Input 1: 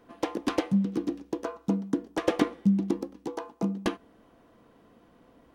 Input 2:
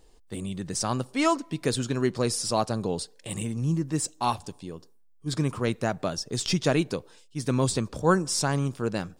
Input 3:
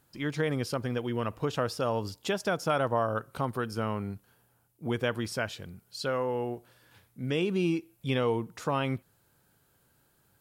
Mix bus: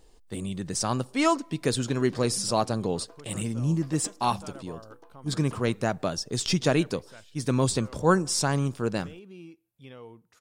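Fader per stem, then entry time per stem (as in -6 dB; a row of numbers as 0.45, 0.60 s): -19.5, +0.5, -18.0 dB; 1.65, 0.00, 1.75 s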